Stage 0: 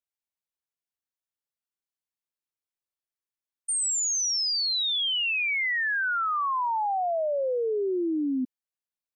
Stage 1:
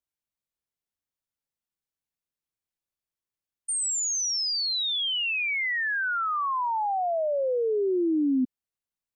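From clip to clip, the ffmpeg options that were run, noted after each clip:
-af "lowshelf=f=270:g=9,volume=-1dB"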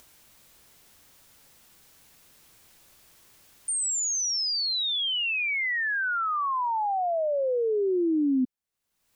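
-af "acompressor=mode=upward:threshold=-30dB:ratio=2.5"

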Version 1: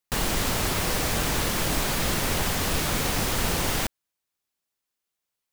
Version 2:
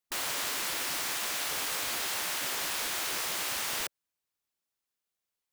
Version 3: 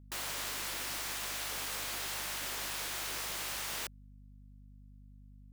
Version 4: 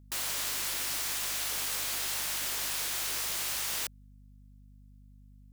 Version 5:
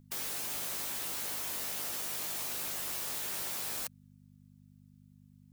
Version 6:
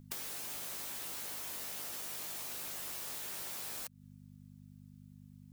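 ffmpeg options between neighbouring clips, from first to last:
-af "afftfilt=real='re*lt(hypot(re,im),0.0891)':imag='im*lt(hypot(re,im),0.0891)':win_size=1024:overlap=0.75,volume=-4dB"
-af "aeval=exprs='val(0)+0.00398*(sin(2*PI*50*n/s)+sin(2*PI*2*50*n/s)/2+sin(2*PI*3*50*n/s)/3+sin(2*PI*4*50*n/s)/4+sin(2*PI*5*50*n/s)/5)':c=same,volume=-5.5dB"
-af "highshelf=f=3.2k:g=7.5"
-af "afftfilt=real='re*lt(hypot(re,im),0.0178)':imag='im*lt(hypot(re,im),0.0178)':win_size=1024:overlap=0.75,volume=2dB"
-af "acompressor=threshold=-43dB:ratio=10,volume=4dB"

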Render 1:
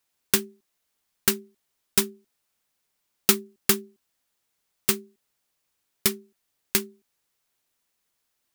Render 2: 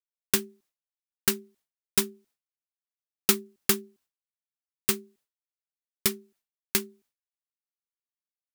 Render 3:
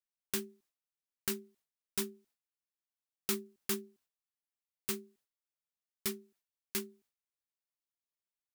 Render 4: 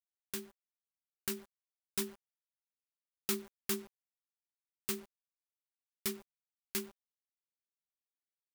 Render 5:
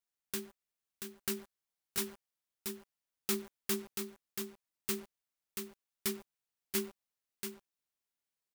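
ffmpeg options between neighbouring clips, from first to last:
-af "agate=range=-33dB:threshold=-55dB:ratio=3:detection=peak,volume=-2.5dB"
-af "alimiter=limit=-15.5dB:level=0:latency=1:release=36,volume=-4.5dB"
-af "acrusher=bits=8:mix=0:aa=0.000001,dynaudnorm=f=270:g=9:m=5dB,volume=-5.5dB"
-filter_complex "[0:a]asoftclip=type=tanh:threshold=-26.5dB,asplit=2[a][b];[b]aecho=0:1:682:0.501[c];[a][c]amix=inputs=2:normalize=0,volume=3dB"

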